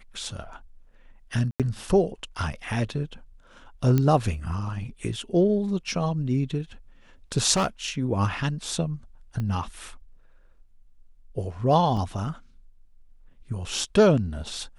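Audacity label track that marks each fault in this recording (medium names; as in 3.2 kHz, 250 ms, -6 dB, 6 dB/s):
1.510000	1.600000	dropout 87 ms
3.980000	3.980000	pop -11 dBFS
7.530000	7.890000	clipped -19 dBFS
9.400000	9.400000	pop -20 dBFS
11.970000	11.970000	dropout 2.4 ms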